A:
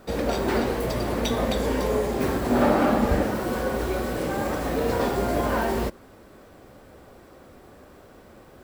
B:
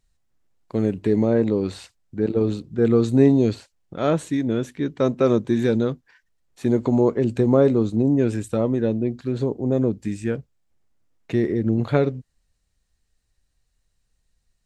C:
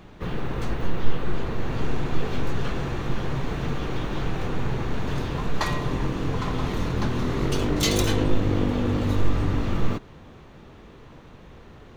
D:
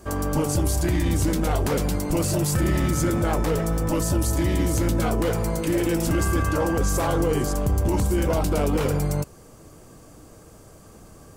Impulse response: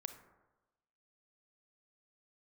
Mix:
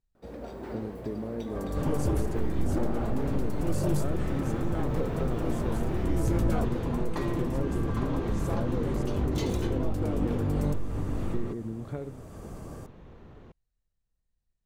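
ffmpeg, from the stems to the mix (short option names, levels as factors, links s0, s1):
-filter_complex "[0:a]adelay=150,volume=0.112[s0];[1:a]acompressor=threshold=0.0891:ratio=6,volume=0.178,asplit=2[s1][s2];[2:a]acompressor=threshold=0.0708:ratio=5,adelay=1550,volume=0.422[s3];[3:a]alimiter=limit=0.0631:level=0:latency=1:release=342,adelay=1500,volume=1.12[s4];[s2]apad=whole_len=567217[s5];[s4][s5]sidechaincompress=threshold=0.00631:ratio=8:attack=31:release=586[s6];[s0][s1][s3][s6]amix=inputs=4:normalize=0,tiltshelf=f=1400:g=5"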